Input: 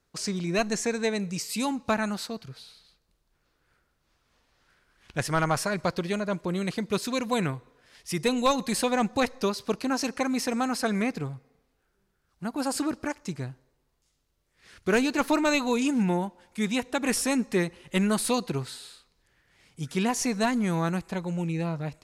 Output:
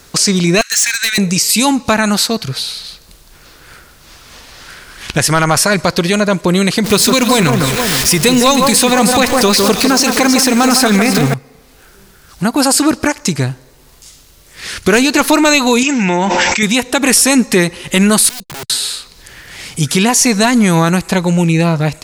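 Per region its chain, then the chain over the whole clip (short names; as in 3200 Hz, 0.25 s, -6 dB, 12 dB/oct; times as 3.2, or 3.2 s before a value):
0.61–1.18 steep high-pass 1400 Hz 48 dB/oct + overloaded stage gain 34.5 dB
6.84–11.34 zero-crossing step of -35.5 dBFS + echo with dull and thin repeats by turns 0.157 s, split 1700 Hz, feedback 65%, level -6 dB
15.83–16.63 rippled Chebyshev low-pass 7800 Hz, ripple 9 dB + low shelf 130 Hz -10 dB + fast leveller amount 100%
18.29–18.7 gate -34 dBFS, range -59 dB + passive tone stack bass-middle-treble 10-0-1 + wrapped overs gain 45 dB
whole clip: high shelf 2600 Hz +8.5 dB; compressor 1.5:1, threshold -58 dBFS; maximiser +29.5 dB; gain -1 dB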